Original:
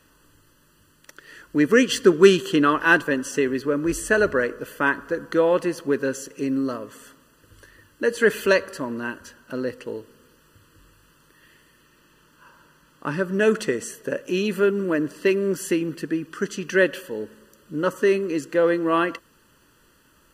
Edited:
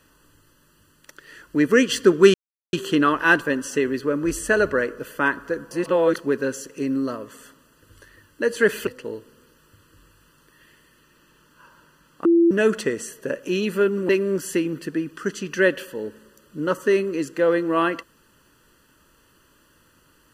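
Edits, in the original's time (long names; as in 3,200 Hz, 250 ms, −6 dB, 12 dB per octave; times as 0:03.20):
0:02.34: splice in silence 0.39 s
0:05.32–0:05.77: reverse
0:08.48–0:09.69: remove
0:13.07–0:13.33: beep over 338 Hz −12 dBFS
0:14.91–0:15.25: remove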